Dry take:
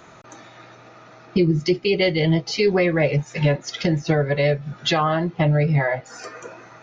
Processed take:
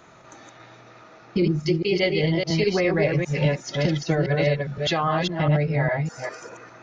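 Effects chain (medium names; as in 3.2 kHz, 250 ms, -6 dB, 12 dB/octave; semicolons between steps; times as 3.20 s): chunks repeated in reverse 203 ms, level -3 dB; 2.50–4.78 s: three bands compressed up and down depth 40%; trim -4 dB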